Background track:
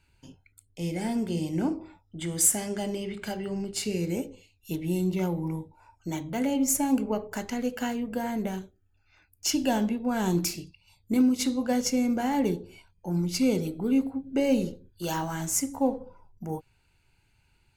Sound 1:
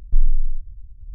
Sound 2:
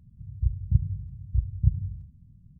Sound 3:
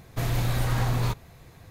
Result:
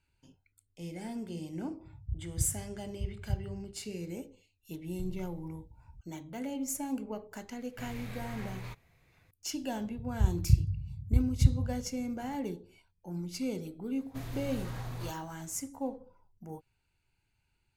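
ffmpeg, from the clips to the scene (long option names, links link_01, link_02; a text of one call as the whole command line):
ffmpeg -i bed.wav -i cue0.wav -i cue1.wav -i cue2.wav -filter_complex "[2:a]asplit=2[link_01][link_02];[3:a]asplit=2[link_03][link_04];[0:a]volume=-10.5dB[link_05];[1:a]highpass=110[link_06];[link_03]equalizer=frequency=2200:width_type=o:width=0.65:gain=9.5[link_07];[link_01]atrim=end=2.59,asetpts=PTS-STARTPTS,volume=-11dB,afade=type=in:duration=0.004:curve=hsin,afade=type=out:start_time=2.586:duration=0.004:curve=hsin,adelay=1660[link_08];[link_06]atrim=end=1.14,asetpts=PTS-STARTPTS,volume=-1dB,afade=type=in:duration=0.004:curve=hsin,afade=type=out:start_time=1.136:duration=0.004:curve=hsin,adelay=4870[link_09];[link_07]atrim=end=1.7,asetpts=PTS-STARTPTS,volume=-17.5dB,afade=type=in:duration=0.004:curve=hsin,afade=type=out:start_time=1.696:duration=0.004:curve=hsin,adelay=7610[link_10];[link_02]atrim=end=2.59,asetpts=PTS-STARTPTS,volume=-1dB,afade=type=in:duration=0.004:curve=hsin,afade=type=out:start_time=2.586:duration=0.004:curve=hsin,adelay=431298S[link_11];[link_04]atrim=end=1.7,asetpts=PTS-STARTPTS,volume=-14.5dB,afade=type=in:duration=0.004:curve=hsin,afade=type=out:start_time=1.696:duration=0.004:curve=hsin,adelay=13980[link_12];[link_05][link_08][link_09][link_10][link_11][link_12]amix=inputs=6:normalize=0" out.wav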